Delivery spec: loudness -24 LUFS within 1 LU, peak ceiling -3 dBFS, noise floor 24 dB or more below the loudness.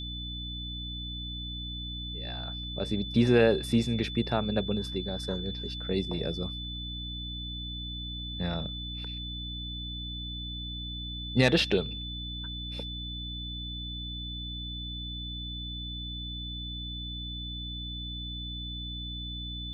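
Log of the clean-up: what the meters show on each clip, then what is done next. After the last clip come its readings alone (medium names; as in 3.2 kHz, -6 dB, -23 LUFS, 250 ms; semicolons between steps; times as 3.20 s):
hum 60 Hz; highest harmonic 300 Hz; hum level -37 dBFS; steady tone 3.5 kHz; tone level -38 dBFS; loudness -32.5 LUFS; peak level -9.0 dBFS; loudness target -24.0 LUFS
-> de-hum 60 Hz, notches 5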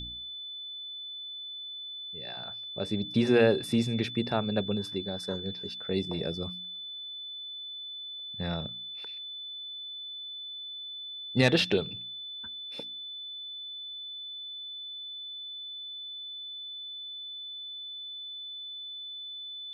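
hum not found; steady tone 3.5 kHz; tone level -38 dBFS
-> band-stop 3.5 kHz, Q 30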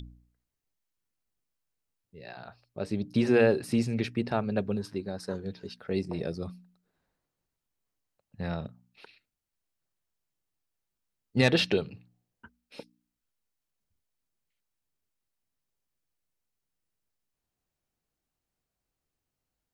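steady tone not found; loudness -29.5 LUFS; peak level -9.0 dBFS; loudness target -24.0 LUFS
-> trim +5.5 dB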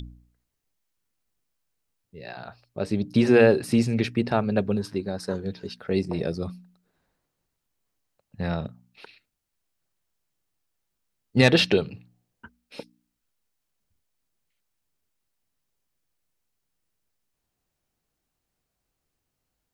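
loudness -24.0 LUFS; peak level -3.5 dBFS; noise floor -81 dBFS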